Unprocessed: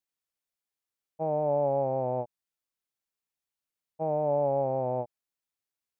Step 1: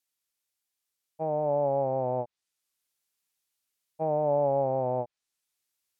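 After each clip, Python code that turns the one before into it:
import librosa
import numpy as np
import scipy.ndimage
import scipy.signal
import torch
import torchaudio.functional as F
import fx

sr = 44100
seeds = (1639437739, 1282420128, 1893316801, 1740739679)

y = fx.high_shelf(x, sr, hz=2100.0, db=10.0)
y = fx.env_lowpass_down(y, sr, base_hz=1700.0, full_db=-26.0)
y = fx.rider(y, sr, range_db=10, speed_s=2.0)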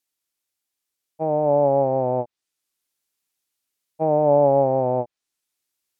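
y = fx.peak_eq(x, sr, hz=310.0, db=4.5, octaves=0.88)
y = fx.upward_expand(y, sr, threshold_db=-36.0, expansion=1.5)
y = y * 10.0 ** (8.5 / 20.0)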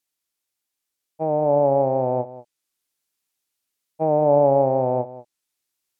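y = x + 10.0 ** (-16.0 / 20.0) * np.pad(x, (int(190 * sr / 1000.0), 0))[:len(x)]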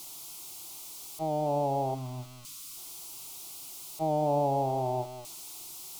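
y = x + 0.5 * 10.0 ** (-30.5 / 20.0) * np.sign(x)
y = fx.fixed_phaser(y, sr, hz=340.0, stages=8)
y = fx.spec_box(y, sr, start_s=1.95, length_s=0.82, low_hz=320.0, high_hz=1000.0, gain_db=-16)
y = y * 10.0 ** (-6.5 / 20.0)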